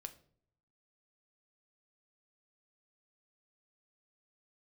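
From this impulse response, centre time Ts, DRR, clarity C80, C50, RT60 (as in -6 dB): 6 ms, 7.5 dB, 19.5 dB, 15.5 dB, not exponential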